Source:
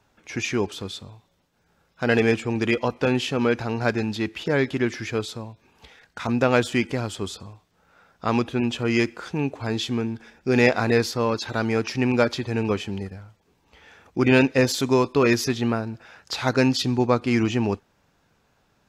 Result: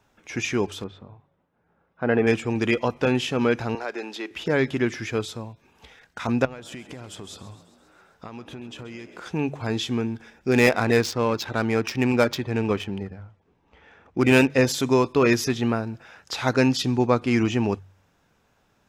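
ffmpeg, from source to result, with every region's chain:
-filter_complex "[0:a]asettb=1/sr,asplit=3[a][b][c];[a]atrim=end=0.844[d];[b]atrim=start=0.84:end=2.27,asetpts=PTS-STARTPTS,afade=t=in:d=0.004:c=qsin,afade=t=out:st=1.426:d=0.004:c=qsin,lowpass=1.5k,lowshelf=f=64:g=-11[e];[c]atrim=start=2.266[f];[d][e]acrossfade=d=0.004:c1=hsin:c2=qsin[g];[g][f]acrossfade=d=0.004:c1=qsin:c2=hsin,asettb=1/sr,asplit=3[h][i][j];[h]atrim=end=3.754[k];[i]atrim=start=3.75:end=4.31,asetpts=PTS-STARTPTS,afade=t=in:d=0.004:c=qsin,afade=t=out:st=0.556:d=0.004:c=qsin,highpass=f=340:w=0.5412,highpass=f=340:w=1.3066,equalizer=f=11k:t=o:w=1.3:g=-4,acompressor=threshold=-28dB:ratio=2.5:attack=3.2:release=140:knee=1:detection=peak[l];[j]atrim=start=4.306[m];[k][l]acrossfade=d=0.004:c1=hsin:c2=qsin[n];[n][m]acrossfade=d=0.004:c1=qsin:c2=hsin,asettb=1/sr,asplit=3[o][p][q];[o]atrim=end=6.454[r];[p]atrim=start=6.45:end=9.26,asetpts=PTS-STARTPTS,afade=t=in:d=0.004:c=qsin,afade=t=out:st=2.806:d=0.004:c=qsin,acompressor=threshold=-34dB:ratio=12:attack=3.2:release=140:knee=1:detection=peak,asplit=8[s][t][u][v][w][x][y][z];[t]adelay=133,afreqshift=68,volume=-15dB[aa];[u]adelay=266,afreqshift=136,volume=-18.9dB[ab];[v]adelay=399,afreqshift=204,volume=-22.8dB[ac];[w]adelay=532,afreqshift=272,volume=-26.6dB[ad];[x]adelay=665,afreqshift=340,volume=-30.5dB[ae];[y]adelay=798,afreqshift=408,volume=-34.4dB[af];[z]adelay=931,afreqshift=476,volume=-38.3dB[ag];[s][aa][ab][ac][ad][ae][af][ag]amix=inputs=8:normalize=0,atrim=end_sample=123921[ah];[q]atrim=start=9.256[ai];[r][ah]acrossfade=d=0.004:c1=hsin:c2=qsin[aj];[aj][ai]acrossfade=d=0.004:c1=qsin:c2=hsin,asettb=1/sr,asplit=3[ak][al][am];[ak]atrim=end=10.514[an];[al]atrim=start=10.51:end=14.5,asetpts=PTS-STARTPTS,afade=t=in:d=0.004:c=qsin,afade=t=out:st=3.986:d=0.004:c=qsin,highshelf=f=5.3k:g=11,adynamicsmooth=sensitivity=2.5:basefreq=2.2k,asoftclip=type=hard:threshold=-6dB[ao];[am]atrim=start=14.496[ap];[an][ao]acrossfade=d=0.004:c1=hsin:c2=qsin[aq];[aq][ap]acrossfade=d=0.004:c1=qsin:c2=hsin,equalizer=f=4.4k:t=o:w=0.21:g=-5,bandreject=f=47.66:t=h:w=4,bandreject=f=95.32:t=h:w=4,bandreject=f=142.98:t=h:w=4"

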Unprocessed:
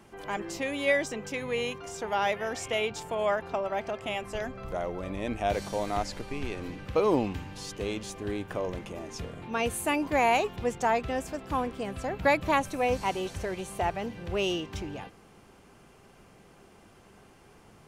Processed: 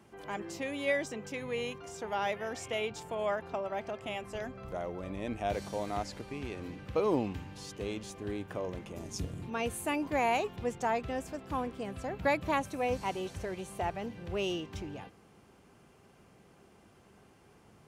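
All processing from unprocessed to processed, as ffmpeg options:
-filter_complex "[0:a]asettb=1/sr,asplit=3[a][b][c];[a]atrim=end=8.964[d];[b]atrim=start=8.96:end=9.5,asetpts=PTS-STARTPTS,afade=t=in:d=0.004:c=qsin,afade=t=out:st=0.536:d=0.004:c=qsin,bass=f=250:g=11,treble=f=4k:g=13,tremolo=f=200:d=0.667[e];[c]atrim=start=9.496[f];[d][e]acrossfade=d=0.004:c1=hsin:c2=qsin[g];[g][f]acrossfade=d=0.004:c1=qsin:c2=hsin,highpass=56,lowshelf=f=440:g=3,volume=-6dB"

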